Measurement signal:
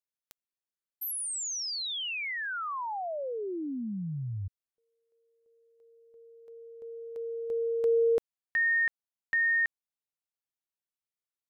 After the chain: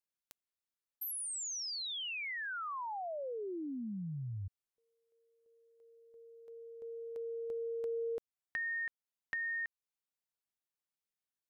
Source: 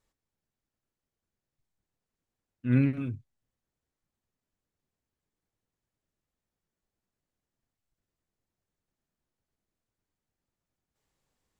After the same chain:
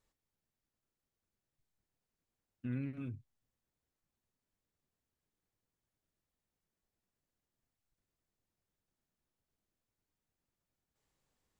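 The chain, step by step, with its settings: compression 3:1, threshold -37 dBFS; trim -2.5 dB

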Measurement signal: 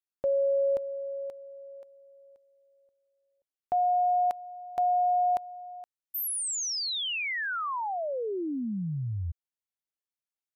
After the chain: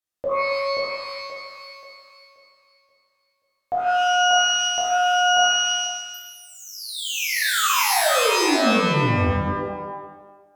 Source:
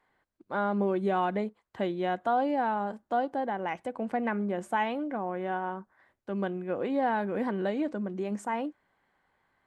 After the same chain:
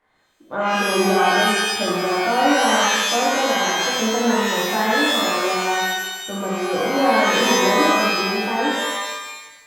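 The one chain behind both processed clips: low-pass that closes with the level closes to 1.7 kHz, closed at -28 dBFS; pitch-shifted reverb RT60 1.1 s, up +12 st, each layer -2 dB, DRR -6.5 dB; trim +1.5 dB

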